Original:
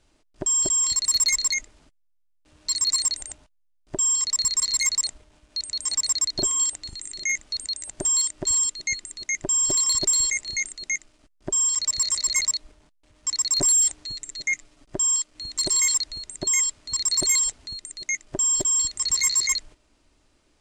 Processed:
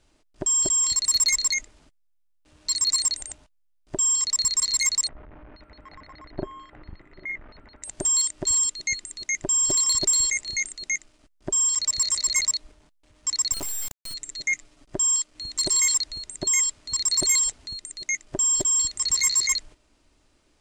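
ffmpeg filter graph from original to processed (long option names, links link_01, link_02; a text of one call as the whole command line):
ffmpeg -i in.wav -filter_complex "[0:a]asettb=1/sr,asplit=3[link_01][link_02][link_03];[link_01]atrim=end=5.084[link_04];[link_02]atrim=start=5.08:end=7.83,asetpts=PTS-STARTPTS,afade=type=in:duration=0.004:curve=qsin,afade=type=out:start_time=2.746:duration=0.004:curve=qsin,aeval=exprs='val(0)+0.5*0.00891*sgn(val(0))':channel_layout=same,lowpass=frequency=1900:width=0.5412,lowpass=frequency=1900:width=1.3066[link_05];[link_03]atrim=start=7.826[link_06];[link_04][link_05]acrossfade=duration=0.004:curve1=hsin:curve2=qsin[link_07];[link_07][link_06]acrossfade=duration=0.004:curve1=qsin:curve2=hsin,asettb=1/sr,asplit=3[link_08][link_09][link_10];[link_08]atrim=end=13.524[link_11];[link_09]atrim=start=13.52:end=14.14,asetpts=PTS-STARTPTS,afade=type=in:duration=0.004:curve=qsin,afade=type=out:start_time=0.616:duration=0.004:curve=qsin,highpass=96,acompressor=threshold=-24dB:ratio=16:attack=3.2:release=140:knee=1:detection=peak,acrusher=bits=3:dc=4:mix=0:aa=0.000001[link_12];[link_10]atrim=start=14.136[link_13];[link_11][link_12]acrossfade=duration=0.004:curve1=hsin:curve2=qsin[link_14];[link_14][link_13]acrossfade=duration=0.004:curve1=qsin:curve2=hsin" out.wav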